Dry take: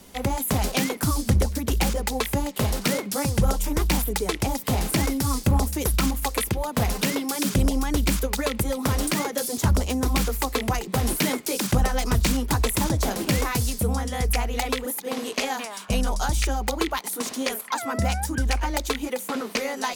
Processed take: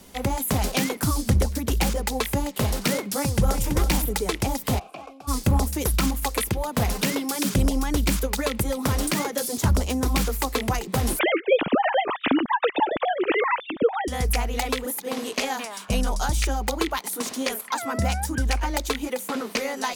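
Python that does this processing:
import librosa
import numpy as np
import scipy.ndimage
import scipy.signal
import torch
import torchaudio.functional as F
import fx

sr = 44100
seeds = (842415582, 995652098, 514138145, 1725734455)

y = fx.echo_throw(x, sr, start_s=3.18, length_s=0.54, ms=330, feedback_pct=20, wet_db=-7.5)
y = fx.vowel_filter(y, sr, vowel='a', at=(4.78, 5.27), fade=0.02)
y = fx.sine_speech(y, sr, at=(11.19, 14.08))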